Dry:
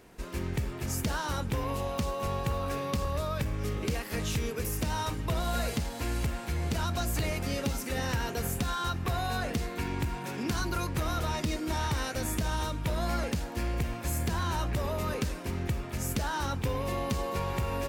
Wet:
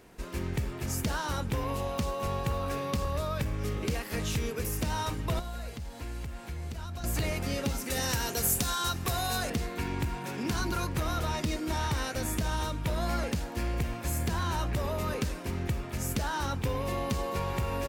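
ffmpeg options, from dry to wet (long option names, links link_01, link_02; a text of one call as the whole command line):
ffmpeg -i in.wav -filter_complex "[0:a]asettb=1/sr,asplit=3[link_01][link_02][link_03];[link_01]atrim=end=5.394[link_04];[link_02]atrim=start=5.39:end=7.04,asetpts=PTS-STARTPTS,afade=type=in:duration=0.004:curve=qsin,afade=type=out:start_time=1.646:duration=0.004:curve=qsin,acrossover=split=86|4600[link_05][link_06][link_07];[link_05]acompressor=threshold=-38dB:ratio=4[link_08];[link_06]acompressor=threshold=-43dB:ratio=4[link_09];[link_07]acompressor=threshold=-57dB:ratio=4[link_10];[link_08][link_09][link_10]amix=inputs=3:normalize=0[link_11];[link_03]atrim=start=7.036[link_12];[link_04][link_11]acrossfade=duration=0.004:curve1=hsin:curve2=qsin[link_13];[link_13][link_12]acrossfade=duration=0.004:curve1=qsin:curve2=hsin,asettb=1/sr,asplit=3[link_14][link_15][link_16];[link_14]atrim=end=7.904[link_17];[link_15]atrim=start=7.9:end=9.5,asetpts=PTS-STARTPTS,afade=type=in:duration=0.004:curve=qsin,afade=type=out:start_time=1.596:duration=0.004:curve=qsin,bass=frequency=250:gain=-2,treble=frequency=4000:gain=11[link_18];[link_16]atrim=start=9.496[link_19];[link_17][link_18]acrossfade=duration=0.004:curve1=hsin:curve2=qsin[link_20];[link_20][link_19]acrossfade=duration=0.004:curve1=qsin:curve2=hsin,asplit=2[link_21][link_22];[link_22]afade=type=in:start_time=10.23:duration=0.01,afade=type=out:start_time=10.65:duration=0.01,aecho=0:1:210|420:0.298538|0.0447807[link_23];[link_21][link_23]amix=inputs=2:normalize=0" out.wav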